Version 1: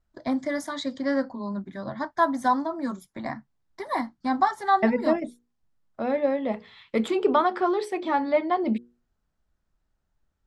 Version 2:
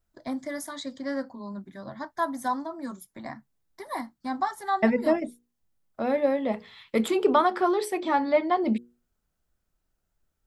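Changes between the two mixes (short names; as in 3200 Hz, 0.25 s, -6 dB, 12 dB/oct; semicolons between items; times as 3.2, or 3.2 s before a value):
first voice -6.0 dB; master: remove air absorption 68 m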